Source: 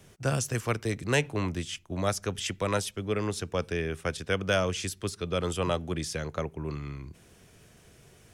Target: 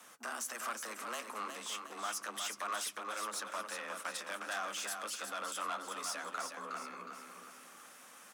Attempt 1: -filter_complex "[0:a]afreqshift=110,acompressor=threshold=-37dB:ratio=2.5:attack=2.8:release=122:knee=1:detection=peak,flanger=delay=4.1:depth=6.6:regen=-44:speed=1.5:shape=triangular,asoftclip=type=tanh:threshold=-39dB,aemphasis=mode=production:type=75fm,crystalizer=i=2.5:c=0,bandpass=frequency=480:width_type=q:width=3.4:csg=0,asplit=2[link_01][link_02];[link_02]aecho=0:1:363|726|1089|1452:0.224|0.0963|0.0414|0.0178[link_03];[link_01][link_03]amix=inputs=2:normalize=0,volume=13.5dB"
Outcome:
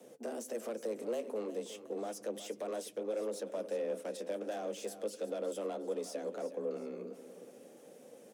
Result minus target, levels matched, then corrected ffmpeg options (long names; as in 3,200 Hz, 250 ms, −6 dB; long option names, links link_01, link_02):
500 Hz band +11.5 dB; echo-to-direct −7 dB
-filter_complex "[0:a]afreqshift=110,acompressor=threshold=-37dB:ratio=2.5:attack=2.8:release=122:knee=1:detection=peak,flanger=delay=4.1:depth=6.6:regen=-44:speed=1.5:shape=triangular,asoftclip=type=tanh:threshold=-39dB,aemphasis=mode=production:type=75fm,crystalizer=i=2.5:c=0,bandpass=frequency=1200:width_type=q:width=3.4:csg=0,asplit=2[link_01][link_02];[link_02]aecho=0:1:363|726|1089|1452|1815:0.501|0.216|0.0927|0.0398|0.0171[link_03];[link_01][link_03]amix=inputs=2:normalize=0,volume=13.5dB"